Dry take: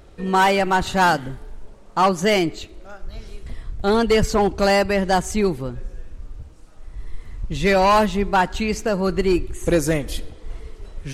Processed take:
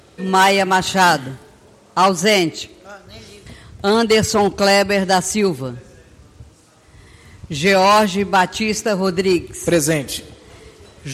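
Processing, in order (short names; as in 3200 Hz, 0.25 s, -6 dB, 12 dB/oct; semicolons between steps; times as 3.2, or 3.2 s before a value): HPF 83 Hz 24 dB/oct; bell 7700 Hz +6.5 dB 2.9 oct; gain +2.5 dB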